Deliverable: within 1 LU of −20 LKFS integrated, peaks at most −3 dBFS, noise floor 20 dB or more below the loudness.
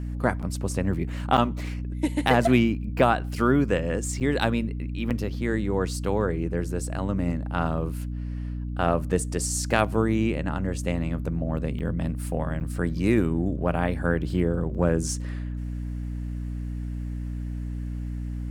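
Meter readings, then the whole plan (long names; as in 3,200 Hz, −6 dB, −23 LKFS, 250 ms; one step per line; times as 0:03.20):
number of dropouts 6; longest dropout 7.4 ms; mains hum 60 Hz; hum harmonics up to 300 Hz; level of the hum −29 dBFS; integrated loudness −26.5 LKFS; sample peak −6.5 dBFS; target loudness −20.0 LKFS
→ repair the gap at 0:00.42/0:01.37/0:04.20/0:05.10/0:11.79/0:12.60, 7.4 ms
mains-hum notches 60/120/180/240/300 Hz
level +6.5 dB
brickwall limiter −3 dBFS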